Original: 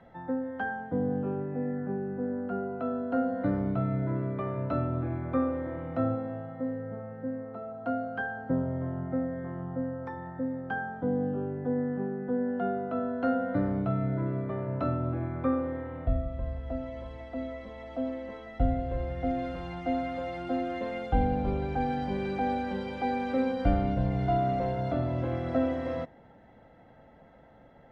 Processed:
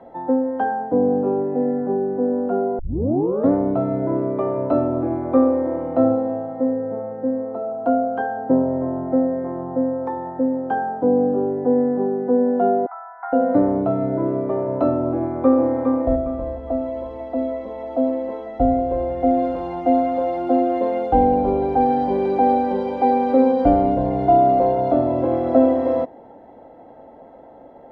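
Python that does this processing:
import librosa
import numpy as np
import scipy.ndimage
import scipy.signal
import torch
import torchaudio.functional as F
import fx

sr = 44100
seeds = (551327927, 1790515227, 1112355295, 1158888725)

y = fx.cheby1_bandpass(x, sr, low_hz=770.0, high_hz=2200.0, order=5, at=(12.86, 13.33))
y = fx.echo_throw(y, sr, start_s=15.17, length_s=0.57, ms=410, feedback_pct=30, wet_db=-4.0)
y = fx.edit(y, sr, fx.tape_start(start_s=2.79, length_s=0.72), tone=tone)
y = fx.band_shelf(y, sr, hz=510.0, db=14.0, octaves=2.4)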